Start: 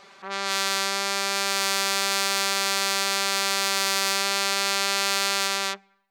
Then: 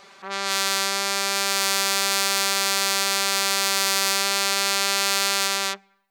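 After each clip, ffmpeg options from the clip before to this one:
-af "highshelf=f=7.6k:g=5.5,volume=1dB"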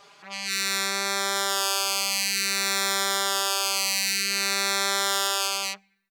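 -filter_complex "[0:a]asplit=2[a][b];[b]adelay=4.4,afreqshift=0.55[c];[a][c]amix=inputs=2:normalize=1"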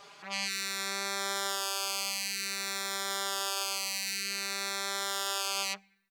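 -af "alimiter=limit=-18dB:level=0:latency=1:release=32"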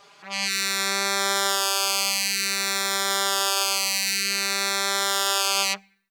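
-af "dynaudnorm=f=110:g=7:m=10dB"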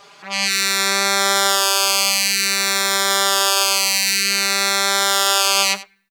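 -af "aecho=1:1:90:0.15,volume=6.5dB"

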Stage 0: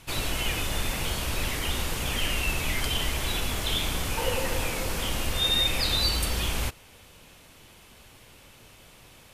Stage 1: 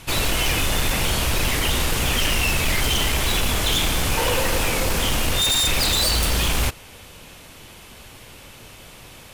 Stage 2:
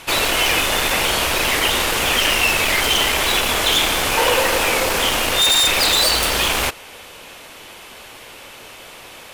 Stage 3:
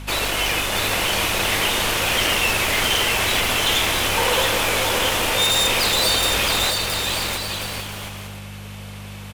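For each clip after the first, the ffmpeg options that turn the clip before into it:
-af "aeval=exprs='0.0668*(abs(mod(val(0)/0.0668+3,4)-2)-1)':c=same,volume=9dB"
-af "bass=f=250:g=-15,treble=f=4k:g=-4,volume=7dB"
-af "aeval=exprs='val(0)+0.0398*(sin(2*PI*50*n/s)+sin(2*PI*2*50*n/s)/2+sin(2*PI*3*50*n/s)/3+sin(2*PI*4*50*n/s)/4+sin(2*PI*5*50*n/s)/5)':c=same,aecho=1:1:670|1106|1389|1573|1692:0.631|0.398|0.251|0.158|0.1,volume=-4.5dB"

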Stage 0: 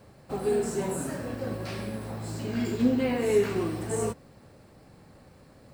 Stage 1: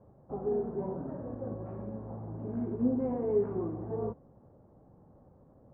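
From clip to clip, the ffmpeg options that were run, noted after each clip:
-af "lowpass=f=1k:w=0.5412,lowpass=f=1k:w=1.3066,volume=-5dB"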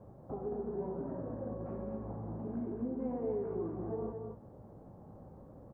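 -filter_complex "[0:a]acompressor=threshold=-48dB:ratio=2,asplit=2[a][b];[b]adelay=18,volume=-12dB[c];[a][c]amix=inputs=2:normalize=0,aecho=1:1:222:0.531,volume=4.5dB"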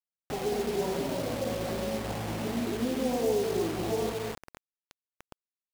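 -af "adynamicequalizer=threshold=0.002:dfrequency=750:dqfactor=0.89:tfrequency=750:tqfactor=0.89:attack=5:release=100:ratio=0.375:range=3:mode=boostabove:tftype=bell,dynaudnorm=f=120:g=5:m=7dB,acrusher=bits=5:mix=0:aa=0.000001,volume=-1.5dB"

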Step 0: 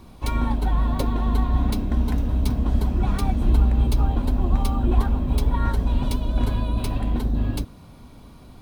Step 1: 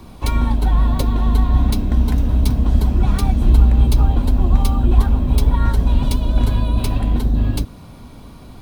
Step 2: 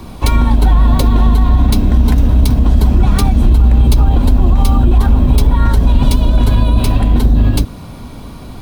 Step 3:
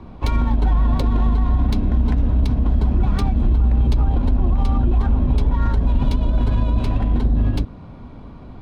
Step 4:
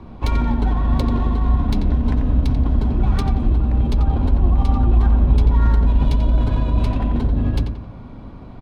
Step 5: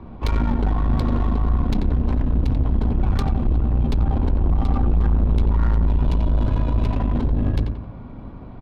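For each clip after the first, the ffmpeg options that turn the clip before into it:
-filter_complex "[0:a]acrossover=split=180|3000[a][b][c];[b]acompressor=threshold=-34dB:ratio=2[d];[a][d][c]amix=inputs=3:normalize=0,volume=6.5dB"
-af "alimiter=level_in=9.5dB:limit=-1dB:release=50:level=0:latency=1,volume=-1dB"
-af "adynamicsmooth=sensitivity=1:basefreq=2.1k,volume=-7.5dB"
-filter_complex "[0:a]asplit=2[a][b];[b]adelay=89,lowpass=f=3k:p=1,volume=-6dB,asplit=2[c][d];[d]adelay=89,lowpass=f=3k:p=1,volume=0.45,asplit=2[e][f];[f]adelay=89,lowpass=f=3k:p=1,volume=0.45,asplit=2[g][h];[h]adelay=89,lowpass=f=3k:p=1,volume=0.45,asplit=2[i][j];[j]adelay=89,lowpass=f=3k:p=1,volume=0.45[k];[a][c][e][g][i][k]amix=inputs=6:normalize=0"
-af "aeval=exprs='(tanh(6.31*val(0)+0.5)-tanh(0.5))/6.31':c=same,adynamicsmooth=sensitivity=6:basefreq=3.3k,volume=2dB"

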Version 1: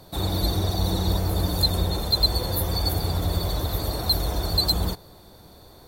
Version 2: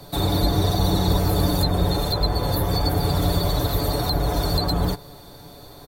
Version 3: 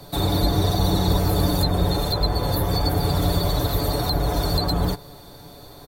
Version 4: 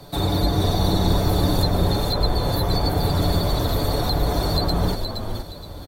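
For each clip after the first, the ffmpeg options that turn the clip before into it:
-filter_complex "[0:a]aecho=1:1:7:0.52,acrossover=split=130|2200[a][b][c];[c]acompressor=threshold=-34dB:ratio=6[d];[a][b][d]amix=inputs=3:normalize=0,volume=5dB"
-af anull
-filter_complex "[0:a]highshelf=f=9.4k:g=-6,asplit=2[a][b];[b]asplit=4[c][d][e][f];[c]adelay=470,afreqshift=-69,volume=-6dB[g];[d]adelay=940,afreqshift=-138,volume=-15.9dB[h];[e]adelay=1410,afreqshift=-207,volume=-25.8dB[i];[f]adelay=1880,afreqshift=-276,volume=-35.7dB[j];[g][h][i][j]amix=inputs=4:normalize=0[k];[a][k]amix=inputs=2:normalize=0"

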